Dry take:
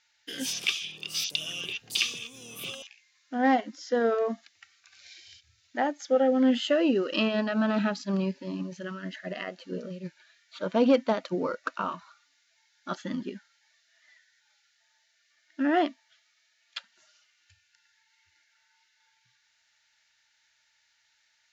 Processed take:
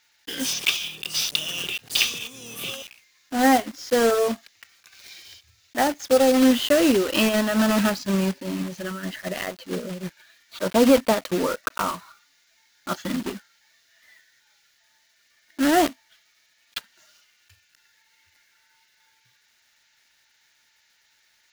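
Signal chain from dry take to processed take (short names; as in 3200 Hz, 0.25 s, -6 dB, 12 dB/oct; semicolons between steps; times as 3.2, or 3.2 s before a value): block floating point 3-bit; gain +5.5 dB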